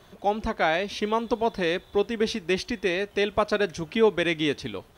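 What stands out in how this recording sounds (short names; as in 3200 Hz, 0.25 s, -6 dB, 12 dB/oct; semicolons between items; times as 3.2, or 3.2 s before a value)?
noise floor -54 dBFS; spectral tilt -3.0 dB/oct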